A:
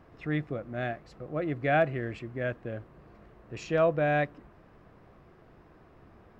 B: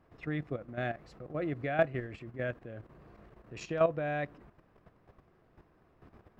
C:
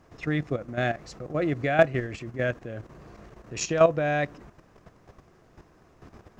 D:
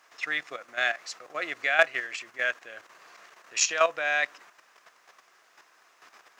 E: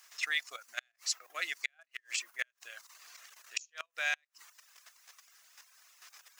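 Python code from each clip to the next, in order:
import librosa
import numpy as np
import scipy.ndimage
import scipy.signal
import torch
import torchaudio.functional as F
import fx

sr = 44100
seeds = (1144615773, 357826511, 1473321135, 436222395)

y1 = fx.level_steps(x, sr, step_db=11)
y2 = fx.peak_eq(y1, sr, hz=6400.0, db=13.5, octaves=0.92)
y2 = F.gain(torch.from_numpy(y2), 8.0).numpy()
y3 = scipy.signal.sosfilt(scipy.signal.butter(2, 1400.0, 'highpass', fs=sr, output='sos'), y2)
y3 = F.gain(torch.from_numpy(y3), 7.5).numpy()
y4 = np.diff(y3, prepend=0.0)
y4 = fx.gate_flip(y4, sr, shuts_db=-26.0, range_db=-33)
y4 = fx.dereverb_blind(y4, sr, rt60_s=0.63)
y4 = F.gain(torch.from_numpy(y4), 8.5).numpy()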